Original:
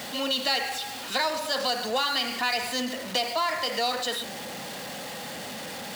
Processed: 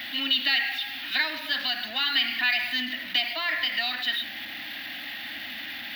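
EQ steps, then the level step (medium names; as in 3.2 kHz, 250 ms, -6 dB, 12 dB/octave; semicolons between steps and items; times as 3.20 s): FFT filter 100 Hz 0 dB, 160 Hz -14 dB, 300 Hz +6 dB, 460 Hz -24 dB, 660 Hz -3 dB, 1.1 kHz -6 dB, 1.8 kHz +12 dB, 3.6 kHz +10 dB, 8.4 kHz -23 dB, 13 kHz +4 dB; -5.0 dB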